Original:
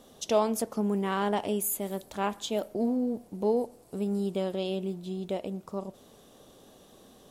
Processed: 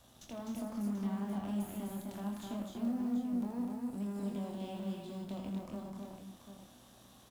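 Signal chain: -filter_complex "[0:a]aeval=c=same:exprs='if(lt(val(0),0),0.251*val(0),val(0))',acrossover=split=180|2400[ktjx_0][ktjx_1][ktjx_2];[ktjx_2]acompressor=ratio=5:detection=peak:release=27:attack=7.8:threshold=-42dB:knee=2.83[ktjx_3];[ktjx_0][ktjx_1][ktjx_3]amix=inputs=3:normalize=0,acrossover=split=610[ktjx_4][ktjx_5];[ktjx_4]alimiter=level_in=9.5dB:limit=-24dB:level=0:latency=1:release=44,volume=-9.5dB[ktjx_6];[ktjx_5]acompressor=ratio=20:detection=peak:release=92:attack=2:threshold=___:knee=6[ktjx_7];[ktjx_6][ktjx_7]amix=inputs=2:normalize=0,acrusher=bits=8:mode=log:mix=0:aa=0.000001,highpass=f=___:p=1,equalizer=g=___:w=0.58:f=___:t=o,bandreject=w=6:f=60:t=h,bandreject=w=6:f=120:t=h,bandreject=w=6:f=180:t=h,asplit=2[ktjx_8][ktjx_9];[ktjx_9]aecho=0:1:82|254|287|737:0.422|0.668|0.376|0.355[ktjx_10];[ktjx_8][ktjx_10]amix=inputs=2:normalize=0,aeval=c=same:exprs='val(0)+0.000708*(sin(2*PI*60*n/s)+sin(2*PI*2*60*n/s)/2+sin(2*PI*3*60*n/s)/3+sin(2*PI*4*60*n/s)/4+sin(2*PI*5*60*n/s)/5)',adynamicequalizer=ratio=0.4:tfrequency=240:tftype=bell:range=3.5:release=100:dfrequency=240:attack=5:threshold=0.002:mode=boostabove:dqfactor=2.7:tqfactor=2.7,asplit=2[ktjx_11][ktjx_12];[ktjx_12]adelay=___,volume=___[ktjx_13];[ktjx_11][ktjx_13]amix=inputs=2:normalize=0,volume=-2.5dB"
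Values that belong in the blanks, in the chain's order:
-48dB, 59, -13, 440, 25, -6.5dB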